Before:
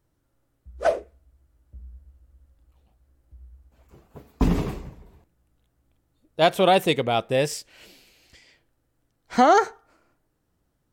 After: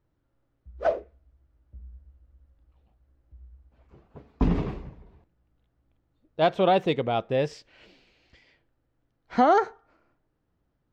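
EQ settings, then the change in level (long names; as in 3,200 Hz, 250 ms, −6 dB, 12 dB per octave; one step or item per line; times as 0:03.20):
dynamic equaliser 2,200 Hz, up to −3 dB, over −34 dBFS, Q 1.1
high-frequency loss of the air 200 metres
−2.0 dB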